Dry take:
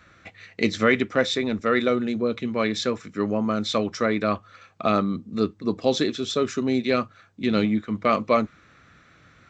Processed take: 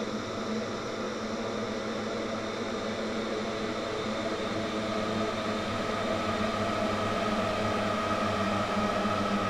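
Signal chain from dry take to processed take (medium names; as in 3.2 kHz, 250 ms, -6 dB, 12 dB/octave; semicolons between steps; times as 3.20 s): shuffle delay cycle 1060 ms, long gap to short 1.5:1, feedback 55%, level -7 dB; valve stage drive 25 dB, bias 0.75; Paulstretch 24×, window 0.50 s, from 4.57 s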